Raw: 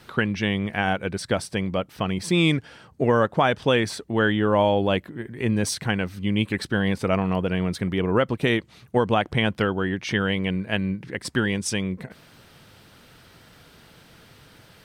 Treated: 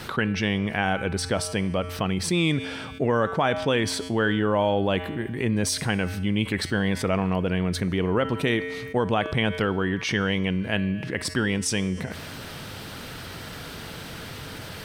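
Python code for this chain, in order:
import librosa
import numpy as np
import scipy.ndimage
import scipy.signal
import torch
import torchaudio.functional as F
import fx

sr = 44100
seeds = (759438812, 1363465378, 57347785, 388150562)

y = fx.comb_fb(x, sr, f0_hz=89.0, decay_s=1.2, harmonics='odd', damping=0.0, mix_pct=60)
y = fx.env_flatten(y, sr, amount_pct=50)
y = y * 10.0 ** (3.5 / 20.0)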